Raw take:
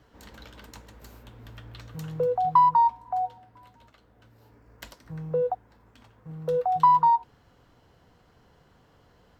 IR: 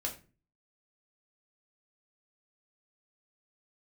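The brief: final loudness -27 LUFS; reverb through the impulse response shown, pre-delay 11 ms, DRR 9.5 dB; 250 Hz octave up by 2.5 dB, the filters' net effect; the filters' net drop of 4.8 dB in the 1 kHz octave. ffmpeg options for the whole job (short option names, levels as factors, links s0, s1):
-filter_complex "[0:a]equalizer=f=250:t=o:g=6,equalizer=f=1000:t=o:g=-5.5,asplit=2[s0][s1];[1:a]atrim=start_sample=2205,adelay=11[s2];[s1][s2]afir=irnorm=-1:irlink=0,volume=0.266[s3];[s0][s3]amix=inputs=2:normalize=0,volume=1.06"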